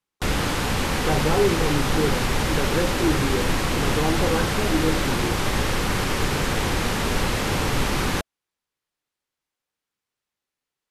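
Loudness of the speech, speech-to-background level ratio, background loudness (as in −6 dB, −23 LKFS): −26.5 LKFS, −2.5 dB, −24.0 LKFS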